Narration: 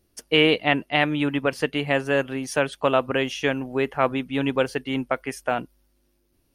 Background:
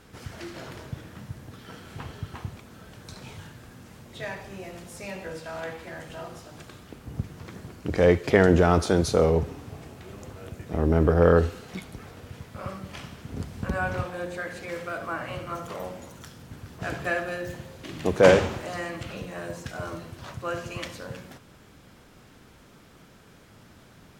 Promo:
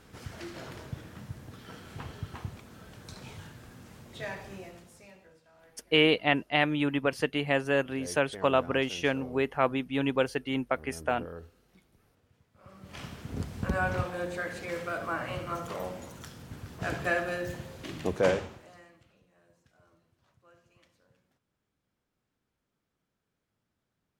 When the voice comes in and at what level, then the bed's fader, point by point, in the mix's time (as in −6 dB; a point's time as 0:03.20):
5.60 s, −4.5 dB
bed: 0:04.53 −3 dB
0:05.43 −25 dB
0:12.53 −25 dB
0:13.03 −1 dB
0:17.89 −1 dB
0:19.19 −30 dB